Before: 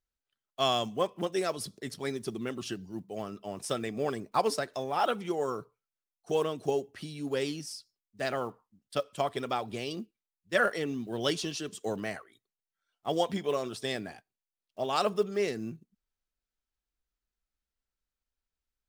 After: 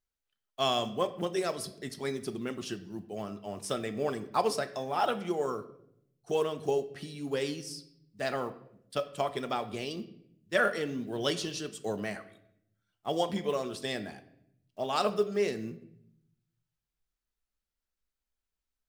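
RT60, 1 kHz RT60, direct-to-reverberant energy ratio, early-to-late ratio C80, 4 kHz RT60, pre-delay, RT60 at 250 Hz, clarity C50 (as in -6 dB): 0.75 s, 0.65 s, 10.0 dB, 17.0 dB, 0.60 s, 5 ms, 1.1 s, 15.0 dB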